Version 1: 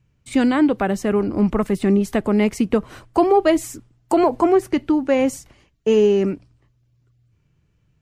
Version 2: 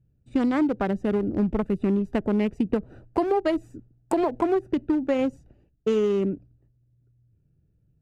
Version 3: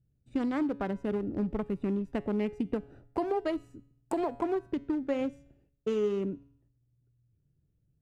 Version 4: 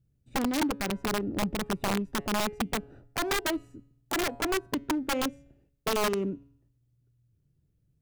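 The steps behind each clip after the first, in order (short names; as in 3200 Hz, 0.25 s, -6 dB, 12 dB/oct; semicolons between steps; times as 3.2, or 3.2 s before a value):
Wiener smoothing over 41 samples; compressor, threshold -17 dBFS, peak gain reduction 7 dB; gain -2 dB
resonator 140 Hz, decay 0.67 s, harmonics all, mix 50%; gain -2 dB
wrapped overs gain 24 dB; gain +2 dB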